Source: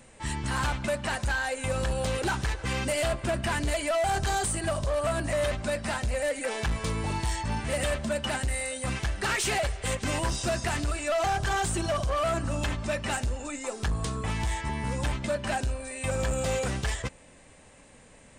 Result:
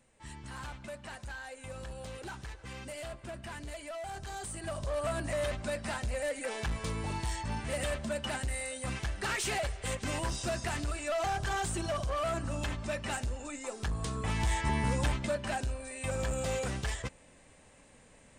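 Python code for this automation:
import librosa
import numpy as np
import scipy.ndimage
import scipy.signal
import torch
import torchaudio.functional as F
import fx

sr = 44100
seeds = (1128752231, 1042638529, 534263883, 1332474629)

y = fx.gain(x, sr, db=fx.line((4.28, -14.5), (4.97, -5.5), (13.95, -5.5), (14.76, 2.0), (15.48, -5.0)))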